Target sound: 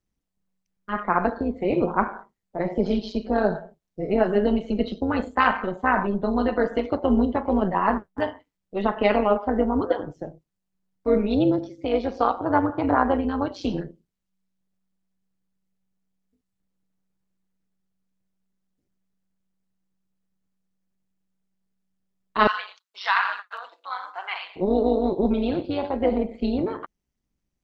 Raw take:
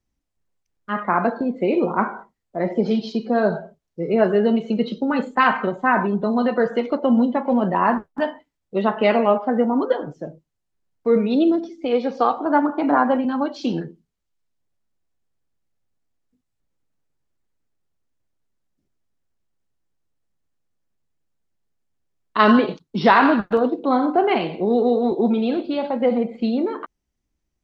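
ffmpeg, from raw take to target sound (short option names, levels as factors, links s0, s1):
-filter_complex "[0:a]tremolo=f=190:d=0.71,asettb=1/sr,asplit=3[s0][s1][s2];[s0]atrim=end=22.474[s3];[s1]atrim=start=22.47:end=24.56,asetpts=PTS-STARTPTS,afade=t=in:d=0.004:c=qsin,afade=t=out:st=2.086:d=0.004:c=qsin,highpass=f=1100:w=0.5412,highpass=f=1100:w=1.3066[s4];[s2]atrim=start=24.556[s5];[s3][s4]acrossfade=d=0.004:c1=hsin:c2=qsin[s6];[s6][s5]acrossfade=d=0.004:c1=qsin:c2=hsin"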